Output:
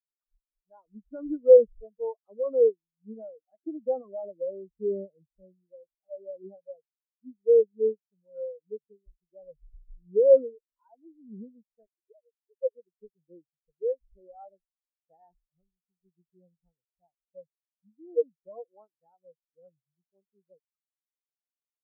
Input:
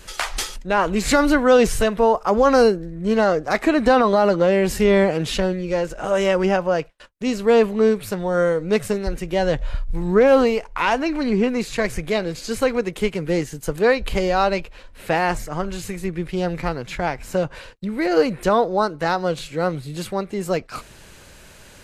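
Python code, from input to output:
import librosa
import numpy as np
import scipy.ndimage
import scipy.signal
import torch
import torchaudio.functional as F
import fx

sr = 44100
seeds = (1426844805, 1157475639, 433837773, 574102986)

y = fx.sine_speech(x, sr, at=(11.86, 12.75))
y = fx.high_shelf(y, sr, hz=2700.0, db=-6.5)
y = fx.spectral_expand(y, sr, expansion=4.0)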